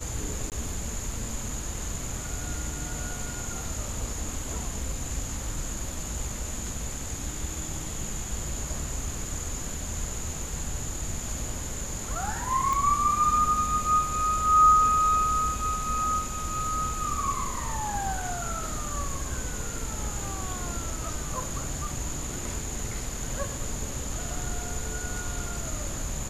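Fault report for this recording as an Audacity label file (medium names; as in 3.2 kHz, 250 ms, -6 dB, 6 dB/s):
0.500000	0.520000	dropout 18 ms
12.730000	12.730000	pop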